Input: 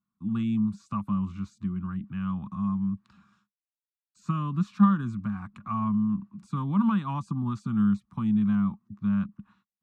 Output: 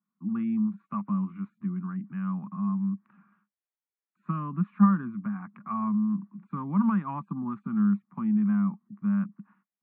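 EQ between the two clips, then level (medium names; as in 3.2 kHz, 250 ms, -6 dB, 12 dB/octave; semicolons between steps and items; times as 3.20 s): elliptic band-pass 170–2100 Hz, stop band 40 dB; 0.0 dB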